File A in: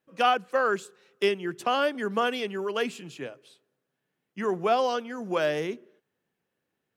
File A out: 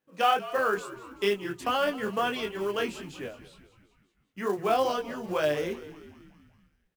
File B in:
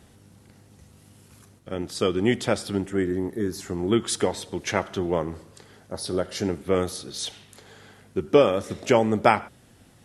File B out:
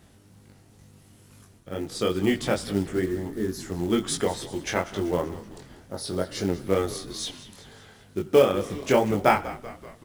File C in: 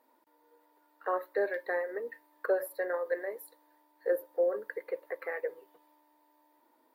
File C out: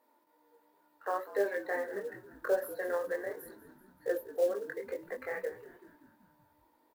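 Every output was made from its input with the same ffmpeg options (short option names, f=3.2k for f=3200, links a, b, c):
-filter_complex "[0:a]flanger=delay=19.5:depth=3.6:speed=2.2,acrusher=bits=6:mode=log:mix=0:aa=0.000001,asplit=7[a][b][c][d][e][f][g];[b]adelay=191,afreqshift=-68,volume=-16dB[h];[c]adelay=382,afreqshift=-136,volume=-20.7dB[i];[d]adelay=573,afreqshift=-204,volume=-25.5dB[j];[e]adelay=764,afreqshift=-272,volume=-30.2dB[k];[f]adelay=955,afreqshift=-340,volume=-34.9dB[l];[g]adelay=1146,afreqshift=-408,volume=-39.7dB[m];[a][h][i][j][k][l][m]amix=inputs=7:normalize=0,volume=1.5dB"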